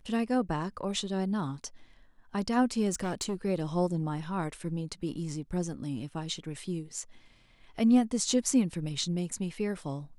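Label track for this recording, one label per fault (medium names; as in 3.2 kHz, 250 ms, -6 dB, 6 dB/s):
2.920000	3.350000	clipped -27.5 dBFS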